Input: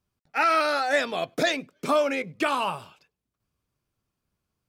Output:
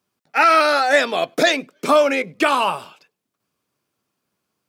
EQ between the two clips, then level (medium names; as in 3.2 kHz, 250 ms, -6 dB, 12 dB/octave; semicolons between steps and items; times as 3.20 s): high-pass 220 Hz 12 dB/octave; +8.0 dB